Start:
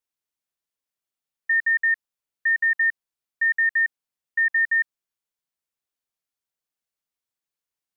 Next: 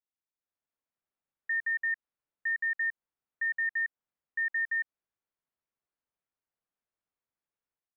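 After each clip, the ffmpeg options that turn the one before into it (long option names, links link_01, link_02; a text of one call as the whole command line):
ffmpeg -i in.wav -af "lowpass=1800,alimiter=level_in=2.5dB:limit=-24dB:level=0:latency=1:release=137,volume=-2.5dB,dynaudnorm=framelen=350:gausssize=3:maxgain=9dB,volume=-8.5dB" out.wav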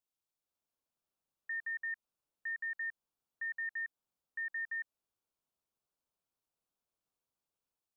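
ffmpeg -i in.wav -af "equalizer=frequency=1900:width=2.5:gain=-11,volume=2dB" out.wav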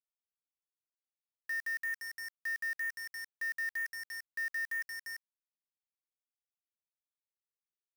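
ffmpeg -i in.wav -af "aecho=1:1:346:0.316,acontrast=36,acrusher=bits=6:mix=0:aa=0.000001,volume=-2.5dB" out.wav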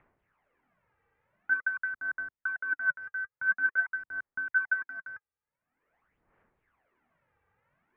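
ffmpeg -i in.wav -af "acompressor=mode=upward:threshold=-52dB:ratio=2.5,aphaser=in_gain=1:out_gain=1:delay=2.7:decay=0.65:speed=0.47:type=sinusoidal,highpass=frequency=200:width_type=q:width=0.5412,highpass=frequency=200:width_type=q:width=1.307,lowpass=frequency=2300:width_type=q:width=0.5176,lowpass=frequency=2300:width_type=q:width=0.7071,lowpass=frequency=2300:width_type=q:width=1.932,afreqshift=-290,volume=5dB" out.wav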